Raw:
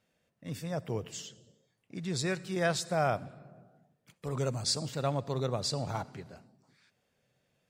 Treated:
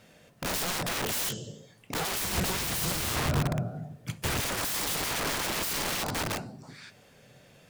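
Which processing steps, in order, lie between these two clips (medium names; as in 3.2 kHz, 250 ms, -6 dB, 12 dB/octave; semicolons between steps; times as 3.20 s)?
simulated room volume 210 m³, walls furnished, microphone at 0.34 m; sine folder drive 15 dB, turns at -13.5 dBFS; compression 10:1, threshold -20 dBFS, peak gain reduction 5.5 dB; integer overflow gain 25.5 dB; 2.24–4.41 s: peaking EQ 78 Hz +12.5 dB 2.5 oct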